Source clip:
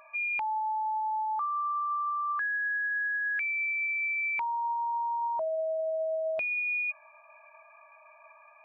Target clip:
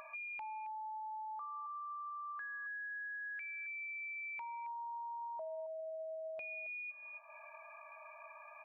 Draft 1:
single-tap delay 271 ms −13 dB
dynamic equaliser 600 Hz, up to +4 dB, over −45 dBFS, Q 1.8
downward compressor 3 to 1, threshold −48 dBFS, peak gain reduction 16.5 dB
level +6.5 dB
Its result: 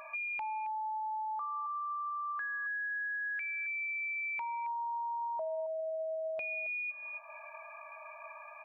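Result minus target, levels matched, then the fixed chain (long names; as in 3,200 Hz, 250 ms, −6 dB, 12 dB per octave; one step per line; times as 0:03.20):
downward compressor: peak gain reduction −7.5 dB
single-tap delay 271 ms −13 dB
dynamic equaliser 600 Hz, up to +4 dB, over −45 dBFS, Q 1.8
downward compressor 3 to 1, threshold −59 dBFS, peak gain reduction 23.5 dB
level +6.5 dB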